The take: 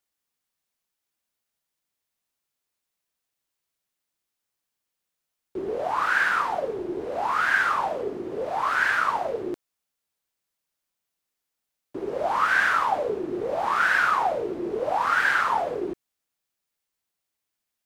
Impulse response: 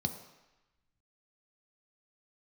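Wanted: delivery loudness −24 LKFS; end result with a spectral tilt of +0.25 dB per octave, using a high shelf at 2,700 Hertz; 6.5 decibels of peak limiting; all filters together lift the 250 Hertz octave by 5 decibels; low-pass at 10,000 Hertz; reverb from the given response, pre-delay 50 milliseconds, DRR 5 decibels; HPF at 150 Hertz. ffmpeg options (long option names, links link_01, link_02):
-filter_complex "[0:a]highpass=150,lowpass=10000,equalizer=frequency=250:width_type=o:gain=8.5,highshelf=frequency=2700:gain=-6,alimiter=limit=-17.5dB:level=0:latency=1,asplit=2[link_01][link_02];[1:a]atrim=start_sample=2205,adelay=50[link_03];[link_02][link_03]afir=irnorm=-1:irlink=0,volume=-7.5dB[link_04];[link_01][link_04]amix=inputs=2:normalize=0,volume=1dB"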